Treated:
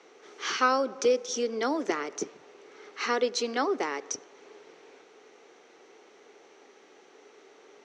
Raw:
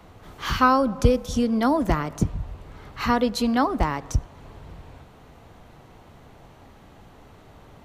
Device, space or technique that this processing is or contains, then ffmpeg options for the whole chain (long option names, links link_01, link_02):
phone speaker on a table: -af "highpass=frequency=340:width=0.5412,highpass=frequency=340:width=1.3066,equalizer=frequency=410:width_type=q:width=4:gain=9,equalizer=frequency=650:width_type=q:width=4:gain=-7,equalizer=frequency=1000:width_type=q:width=4:gain=-7,equalizer=frequency=2200:width_type=q:width=4:gain=4,equalizer=frequency=5900:width_type=q:width=4:gain=10,lowpass=frequency=7100:width=0.5412,lowpass=frequency=7100:width=1.3066,volume=-3dB"